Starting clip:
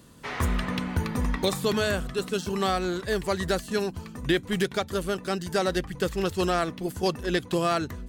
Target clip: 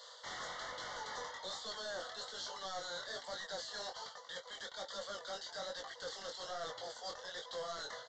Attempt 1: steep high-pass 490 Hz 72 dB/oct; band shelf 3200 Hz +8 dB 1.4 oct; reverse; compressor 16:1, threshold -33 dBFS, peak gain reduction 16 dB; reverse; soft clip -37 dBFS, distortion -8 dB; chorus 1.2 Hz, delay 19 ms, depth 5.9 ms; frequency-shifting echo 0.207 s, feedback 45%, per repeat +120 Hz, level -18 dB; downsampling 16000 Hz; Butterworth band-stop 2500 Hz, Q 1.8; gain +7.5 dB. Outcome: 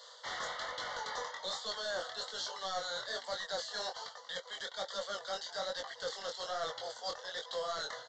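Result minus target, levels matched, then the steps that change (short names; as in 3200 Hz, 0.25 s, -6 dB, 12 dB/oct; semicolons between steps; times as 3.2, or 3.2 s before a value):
soft clip: distortion -4 dB
change: soft clip -44.5 dBFS, distortion -4 dB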